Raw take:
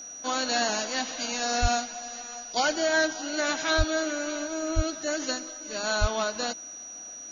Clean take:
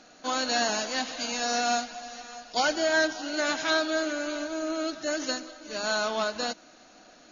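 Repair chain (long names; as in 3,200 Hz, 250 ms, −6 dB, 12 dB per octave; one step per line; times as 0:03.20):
notch filter 5,800 Hz, Q 30
high-pass at the plosives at 0:01.61/0:03.77/0:04.75/0:06.00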